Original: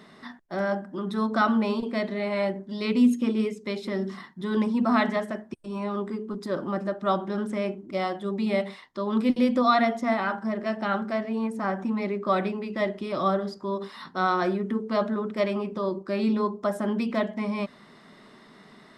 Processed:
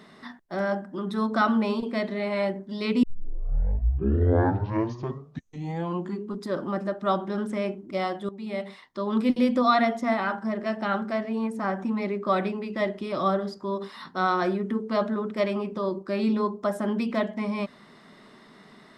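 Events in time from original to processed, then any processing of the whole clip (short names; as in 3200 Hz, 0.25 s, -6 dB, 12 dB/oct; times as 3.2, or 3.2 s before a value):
3.03 tape start 3.36 s
8.29–9 fade in, from -14.5 dB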